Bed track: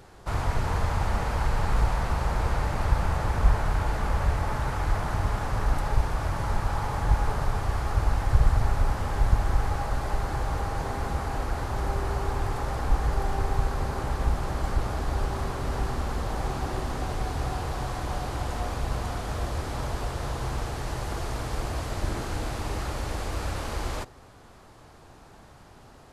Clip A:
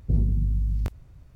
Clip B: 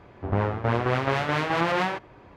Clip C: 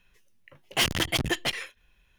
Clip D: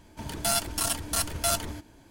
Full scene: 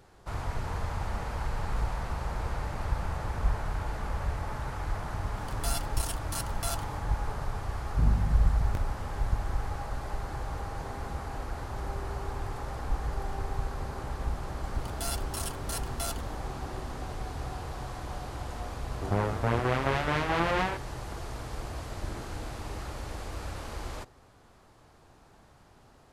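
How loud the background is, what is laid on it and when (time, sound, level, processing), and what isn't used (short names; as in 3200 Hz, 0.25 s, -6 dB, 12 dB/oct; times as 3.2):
bed track -7 dB
5.19 add D -9 dB
7.89 add A -4 dB
14.56 add D -9.5 dB
18.79 add B -3.5 dB
not used: C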